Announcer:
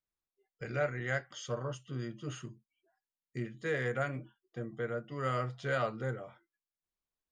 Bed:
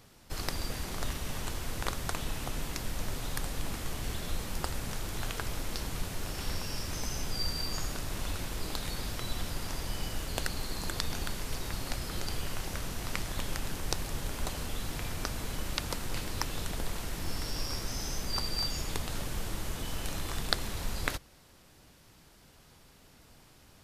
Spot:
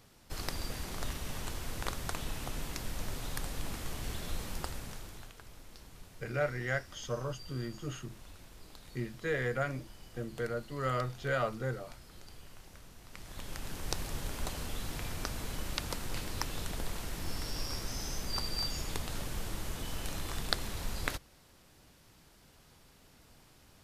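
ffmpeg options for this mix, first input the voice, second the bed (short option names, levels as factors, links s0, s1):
-filter_complex "[0:a]adelay=5600,volume=1.06[s0];[1:a]volume=3.76,afade=t=out:st=4.48:d=0.84:silence=0.199526,afade=t=in:st=13.1:d=0.88:silence=0.188365[s1];[s0][s1]amix=inputs=2:normalize=0"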